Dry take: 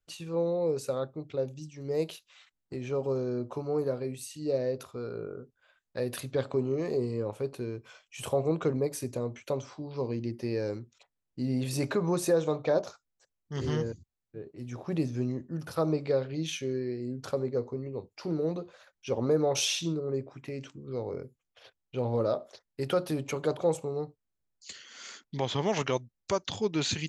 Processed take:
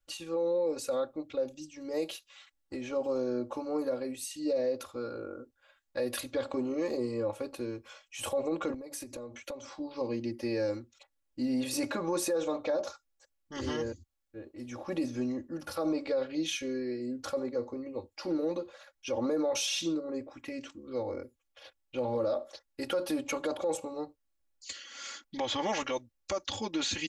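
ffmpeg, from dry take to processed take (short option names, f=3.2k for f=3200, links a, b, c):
-filter_complex "[0:a]asettb=1/sr,asplit=3[a][b][c];[a]atrim=end=8.744[d];[b]atrim=start=8.74:end=9.8,asetpts=PTS-STARTPTS,afade=t=in:d=0.004:c=qsin,afade=t=out:st=1.056:d=0.004:c=qsin,acompressor=threshold=-38dB:ratio=12:attack=3.2:release=140:knee=1:detection=peak[e];[c]atrim=start=9.796[f];[d][e]acrossfade=d=0.004:c1=hsin:c2=qsin[g];[g][f]acrossfade=d=0.004:c1=qsin:c2=hsin,equalizer=f=190:t=o:w=0.81:g=-9,aecho=1:1:3.6:0.95,alimiter=limit=-23dB:level=0:latency=1:release=34"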